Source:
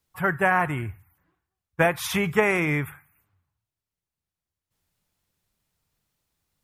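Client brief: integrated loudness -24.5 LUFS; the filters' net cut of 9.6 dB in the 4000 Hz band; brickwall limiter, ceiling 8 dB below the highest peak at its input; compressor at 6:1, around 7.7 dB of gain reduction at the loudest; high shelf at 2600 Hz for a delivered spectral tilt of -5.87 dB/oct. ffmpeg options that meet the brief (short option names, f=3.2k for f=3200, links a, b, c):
-af "highshelf=f=2.6k:g=-8.5,equalizer=f=4k:t=o:g=-5.5,acompressor=threshold=-25dB:ratio=6,volume=8.5dB,alimiter=limit=-14.5dB:level=0:latency=1"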